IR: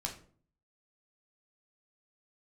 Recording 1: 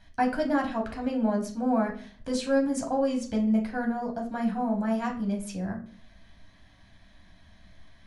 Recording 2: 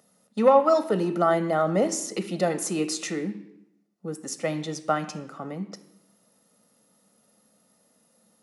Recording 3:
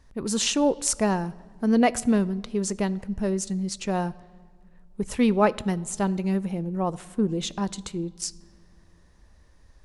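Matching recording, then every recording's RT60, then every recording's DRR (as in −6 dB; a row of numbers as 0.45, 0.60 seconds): 1; 0.50 s, 0.85 s, non-exponential decay; −0.5, 9.5, 17.5 decibels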